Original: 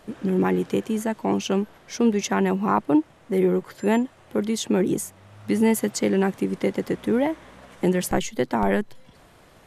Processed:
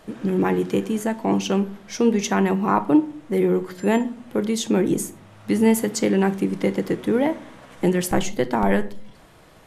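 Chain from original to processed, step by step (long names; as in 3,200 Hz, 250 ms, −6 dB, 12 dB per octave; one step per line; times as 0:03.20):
rectangular room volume 460 cubic metres, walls furnished, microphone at 0.6 metres
level +1.5 dB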